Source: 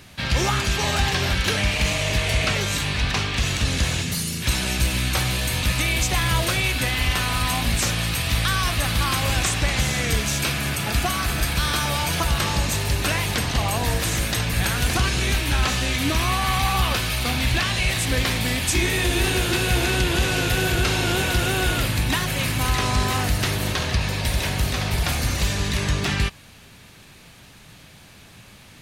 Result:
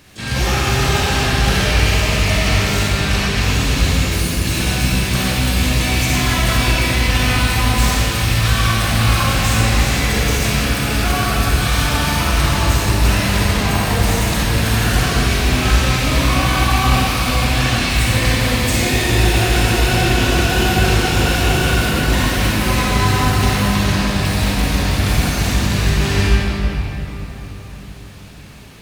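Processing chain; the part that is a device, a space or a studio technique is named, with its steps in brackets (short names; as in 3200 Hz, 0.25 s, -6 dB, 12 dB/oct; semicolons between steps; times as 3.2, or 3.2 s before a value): shimmer-style reverb (harmoniser +12 st -7 dB; reverb RT60 4.2 s, pre-delay 34 ms, DRR -7.5 dB); gain -3 dB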